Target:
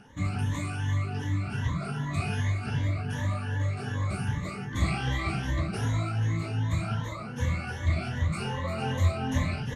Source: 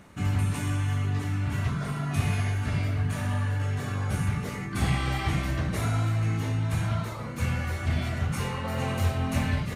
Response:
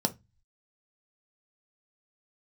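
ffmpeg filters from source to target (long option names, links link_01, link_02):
-af "afftfilt=real='re*pow(10,17/40*sin(2*PI*(1.1*log(max(b,1)*sr/1024/100)/log(2)-(2.6)*(pts-256)/sr)))':imag='im*pow(10,17/40*sin(2*PI*(1.1*log(max(b,1)*sr/1024/100)/log(2)-(2.6)*(pts-256)/sr)))':win_size=1024:overlap=0.75,lowpass=7900,volume=-4.5dB"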